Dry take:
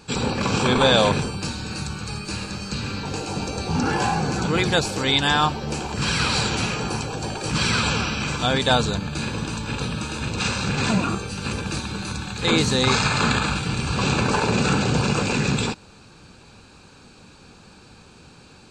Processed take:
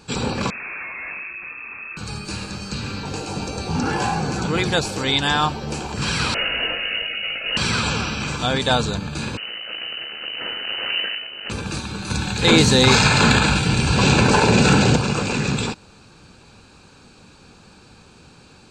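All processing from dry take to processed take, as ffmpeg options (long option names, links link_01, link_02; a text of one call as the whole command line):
ffmpeg -i in.wav -filter_complex "[0:a]asettb=1/sr,asplit=3[link_01][link_02][link_03];[link_01]atrim=end=0.504[link_04];[link_02]atrim=start=0.5:end=1.97,asetpts=PTS-STARTPTS,afade=type=in:duration=0.004:curve=qsin,afade=type=out:start_time=1.466:duration=0.004:curve=qsin,aeval=exprs='(tanh(31.6*val(0)+0.2)-tanh(0.2))/31.6':channel_layout=same,lowpass=frequency=2300:width_type=q:width=0.5098,lowpass=frequency=2300:width_type=q:width=0.6013,lowpass=frequency=2300:width_type=q:width=0.9,lowpass=frequency=2300:width_type=q:width=2.563,afreqshift=-2700[link_05];[link_03]atrim=start=1.966[link_06];[link_04][link_05]acrossfade=duration=0.004:curve1=hsin:curve2=qsin[link_07];[link_07][link_06]acrossfade=duration=0.004:curve1=qsin:curve2=hsin,asettb=1/sr,asplit=3[link_08][link_09][link_10];[link_08]atrim=end=6.344[link_11];[link_09]atrim=start=6.34:end=7.57,asetpts=PTS-STARTPTS,afade=type=in:duration=0.004:curve=qsin,afade=type=out:start_time=1.226:duration=0.004:curve=qsin,asplit=2[link_12][link_13];[link_13]adelay=19,volume=-5.5dB[link_14];[link_12][link_14]amix=inputs=2:normalize=0,atrim=end_sample=54243,lowpass=frequency=2600:width_type=q:width=0.5098,lowpass=frequency=2600:width_type=q:width=0.6013,lowpass=frequency=2600:width_type=q:width=0.9,lowpass=frequency=2600:width_type=q:width=2.563,afreqshift=-3000,lowshelf=frequency=120:gain=10[link_15];[link_10]atrim=start=7.566[link_16];[link_11][link_15]acrossfade=duration=0.004:curve1=hsin:curve2=qsin[link_17];[link_17][link_16]acrossfade=duration=0.004:curve1=qsin:curve2=hsin,asettb=1/sr,asplit=3[link_18][link_19][link_20];[link_18]atrim=end=9.374[link_21];[link_19]atrim=start=9.37:end=11.5,asetpts=PTS-STARTPTS,afade=type=in:duration=0.004:curve=qsin,afade=type=out:start_time=2.126:duration=0.004:curve=qsin,aeval=exprs='max(val(0),0)':channel_layout=same,lowpass=frequency=2600:width_type=q:width=0.5098,lowpass=frequency=2600:width_type=q:width=0.6013,lowpass=frequency=2600:width_type=q:width=0.9,lowpass=frequency=2600:width_type=q:width=2.563,afreqshift=-3000[link_22];[link_20]atrim=start=11.496[link_23];[link_21][link_22]acrossfade=duration=0.004:curve1=hsin:curve2=qsin[link_24];[link_24][link_23]acrossfade=duration=0.004:curve1=qsin:curve2=hsin,asettb=1/sr,asplit=3[link_25][link_26][link_27];[link_25]atrim=end=12.104[link_28];[link_26]atrim=start=12.1:end=14.96,asetpts=PTS-STARTPTS,afade=type=in:duration=0.004:curve=qsin,afade=type=out:start_time=2.856:duration=0.004:curve=qsin,bandreject=frequency=1200:width=6.5,acontrast=67[link_29];[link_27]atrim=start=14.956[link_30];[link_28][link_29]acrossfade=duration=0.004:curve1=hsin:curve2=qsin[link_31];[link_31][link_30]acrossfade=duration=0.004:curve1=qsin:curve2=hsin" out.wav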